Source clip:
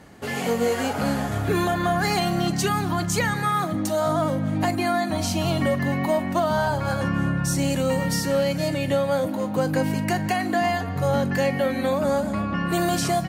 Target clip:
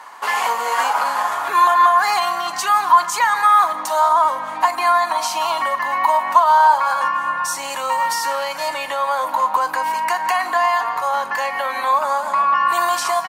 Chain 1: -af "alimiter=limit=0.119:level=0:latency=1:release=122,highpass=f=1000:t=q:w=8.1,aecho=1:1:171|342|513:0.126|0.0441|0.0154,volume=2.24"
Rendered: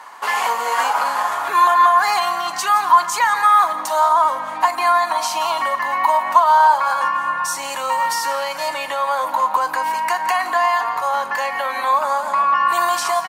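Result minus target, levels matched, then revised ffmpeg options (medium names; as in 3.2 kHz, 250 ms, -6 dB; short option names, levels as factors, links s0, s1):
echo-to-direct +8.5 dB
-af "alimiter=limit=0.119:level=0:latency=1:release=122,highpass=f=1000:t=q:w=8.1,aecho=1:1:171|342:0.0473|0.0166,volume=2.24"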